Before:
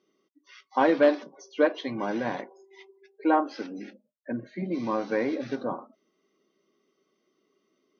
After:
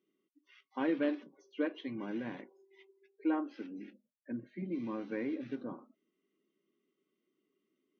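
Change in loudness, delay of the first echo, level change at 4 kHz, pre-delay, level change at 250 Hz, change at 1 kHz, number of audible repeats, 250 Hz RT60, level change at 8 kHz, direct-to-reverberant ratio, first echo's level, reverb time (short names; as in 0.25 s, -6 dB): -10.5 dB, none, -11.5 dB, none, -6.5 dB, -17.0 dB, none, none, n/a, none, none, none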